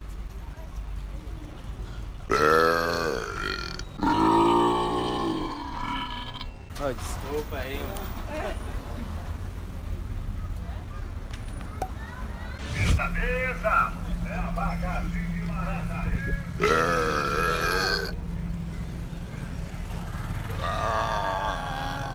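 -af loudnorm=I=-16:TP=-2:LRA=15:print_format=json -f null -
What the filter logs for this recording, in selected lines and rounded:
"input_i" : "-28.5",
"input_tp" : "-7.6",
"input_lra" : "8.5",
"input_thresh" : "-38.8",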